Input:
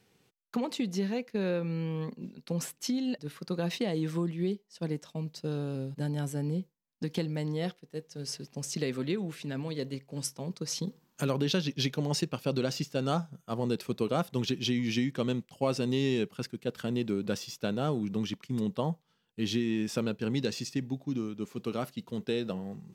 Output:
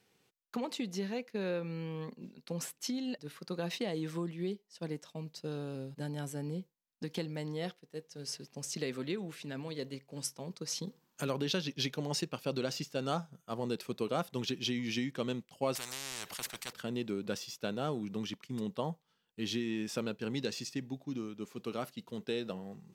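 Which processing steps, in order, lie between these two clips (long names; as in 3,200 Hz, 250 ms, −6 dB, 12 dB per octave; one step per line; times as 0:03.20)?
low-shelf EQ 250 Hz −7 dB
0:15.75–0:16.73: every bin compressed towards the loudest bin 10 to 1
level −2.5 dB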